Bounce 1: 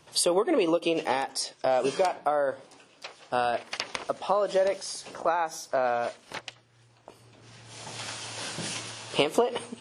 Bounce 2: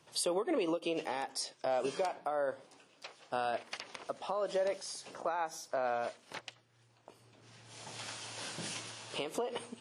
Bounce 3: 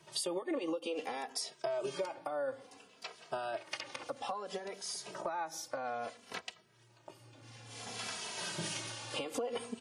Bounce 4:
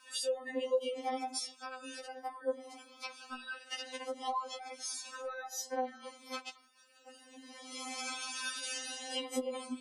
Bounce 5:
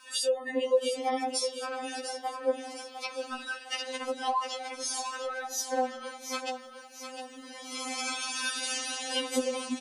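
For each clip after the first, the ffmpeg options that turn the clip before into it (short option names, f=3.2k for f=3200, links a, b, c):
-af "highpass=90,alimiter=limit=-17dB:level=0:latency=1:release=143,volume=-7dB"
-filter_complex "[0:a]acompressor=threshold=-38dB:ratio=5,asplit=2[a][b];[b]adelay=2.7,afreqshift=-0.59[c];[a][c]amix=inputs=2:normalize=1,volume=6.5dB"
-filter_complex "[0:a]asplit=2[a][b];[b]acompressor=threshold=-46dB:ratio=6,volume=1.5dB[c];[a][c]amix=inputs=2:normalize=0,afftfilt=real='re*3.46*eq(mod(b,12),0)':imag='im*3.46*eq(mod(b,12),0)':win_size=2048:overlap=0.75"
-af "aecho=1:1:705|1410|2115|2820|3525|4230:0.355|0.174|0.0852|0.0417|0.0205|0.01,volume=6.5dB"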